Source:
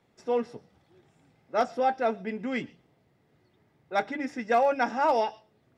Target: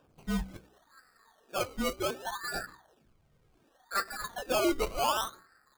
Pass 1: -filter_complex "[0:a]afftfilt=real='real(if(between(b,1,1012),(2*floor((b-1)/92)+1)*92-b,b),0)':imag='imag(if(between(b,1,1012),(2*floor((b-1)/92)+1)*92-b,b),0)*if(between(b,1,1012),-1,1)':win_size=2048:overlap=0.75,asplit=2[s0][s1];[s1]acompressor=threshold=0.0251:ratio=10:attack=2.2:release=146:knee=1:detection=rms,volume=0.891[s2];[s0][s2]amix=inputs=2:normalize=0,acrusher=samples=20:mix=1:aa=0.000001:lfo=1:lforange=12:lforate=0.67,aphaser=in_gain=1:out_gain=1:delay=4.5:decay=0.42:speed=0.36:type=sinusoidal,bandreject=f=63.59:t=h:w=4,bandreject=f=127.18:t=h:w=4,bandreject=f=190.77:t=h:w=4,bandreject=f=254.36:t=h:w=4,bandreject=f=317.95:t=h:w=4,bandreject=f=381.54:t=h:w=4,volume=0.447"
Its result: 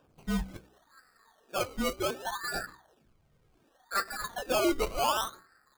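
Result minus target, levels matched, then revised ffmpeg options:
compression: peak gain reduction -6.5 dB
-filter_complex "[0:a]afftfilt=real='real(if(between(b,1,1012),(2*floor((b-1)/92)+1)*92-b,b),0)':imag='imag(if(between(b,1,1012),(2*floor((b-1)/92)+1)*92-b,b),0)*if(between(b,1,1012),-1,1)':win_size=2048:overlap=0.75,asplit=2[s0][s1];[s1]acompressor=threshold=0.0112:ratio=10:attack=2.2:release=146:knee=1:detection=rms,volume=0.891[s2];[s0][s2]amix=inputs=2:normalize=0,acrusher=samples=20:mix=1:aa=0.000001:lfo=1:lforange=12:lforate=0.67,aphaser=in_gain=1:out_gain=1:delay=4.5:decay=0.42:speed=0.36:type=sinusoidal,bandreject=f=63.59:t=h:w=4,bandreject=f=127.18:t=h:w=4,bandreject=f=190.77:t=h:w=4,bandreject=f=254.36:t=h:w=4,bandreject=f=317.95:t=h:w=4,bandreject=f=381.54:t=h:w=4,volume=0.447"

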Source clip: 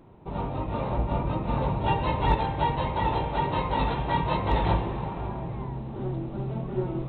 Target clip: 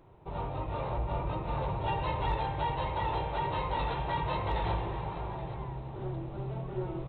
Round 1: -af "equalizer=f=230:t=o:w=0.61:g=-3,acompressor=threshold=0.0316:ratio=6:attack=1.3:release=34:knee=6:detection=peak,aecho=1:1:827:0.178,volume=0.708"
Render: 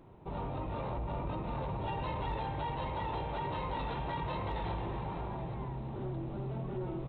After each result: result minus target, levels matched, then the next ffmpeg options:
compression: peak gain reduction +6.5 dB; 250 Hz band +3.5 dB
-af "equalizer=f=230:t=o:w=0.61:g=-3,acompressor=threshold=0.075:ratio=6:attack=1.3:release=34:knee=6:detection=peak,aecho=1:1:827:0.178,volume=0.708"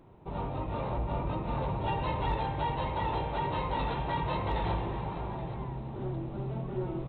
250 Hz band +3.0 dB
-af "equalizer=f=230:t=o:w=0.61:g=-13,acompressor=threshold=0.075:ratio=6:attack=1.3:release=34:knee=6:detection=peak,aecho=1:1:827:0.178,volume=0.708"

